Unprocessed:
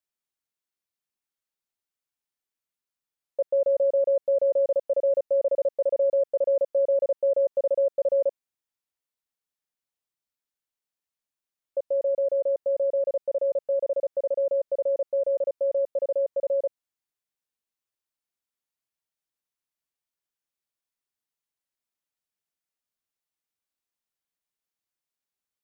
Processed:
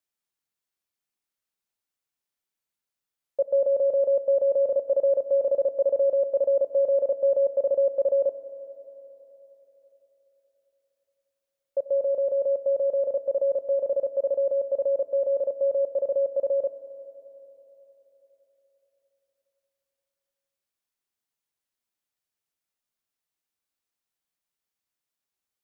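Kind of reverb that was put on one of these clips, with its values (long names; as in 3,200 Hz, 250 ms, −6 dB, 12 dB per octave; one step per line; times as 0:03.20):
four-comb reverb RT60 3.9 s, combs from 29 ms, DRR 12 dB
level +1.5 dB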